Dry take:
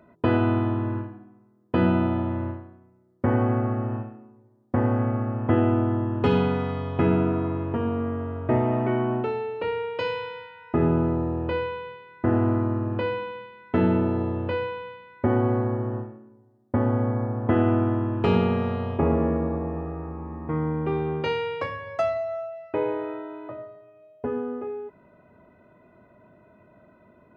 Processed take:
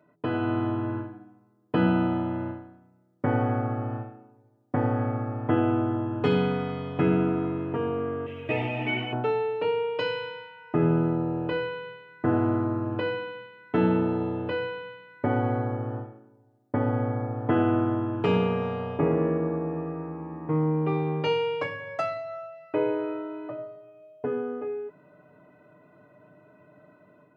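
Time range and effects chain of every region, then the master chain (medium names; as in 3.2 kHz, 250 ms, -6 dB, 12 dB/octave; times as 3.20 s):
8.26–9.13 s: resonant high shelf 1.8 kHz +11.5 dB, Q 3 + three-phase chorus
whole clip: high-pass 110 Hz; comb 6.7 ms, depth 68%; level rider gain up to 7 dB; trim -8.5 dB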